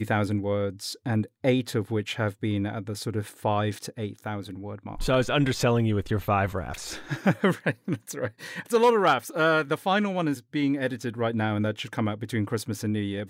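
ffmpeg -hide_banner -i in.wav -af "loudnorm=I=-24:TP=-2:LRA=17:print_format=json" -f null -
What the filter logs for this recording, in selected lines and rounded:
"input_i" : "-27.2",
"input_tp" : "-8.1",
"input_lra" : "3.8",
"input_thresh" : "-37.3",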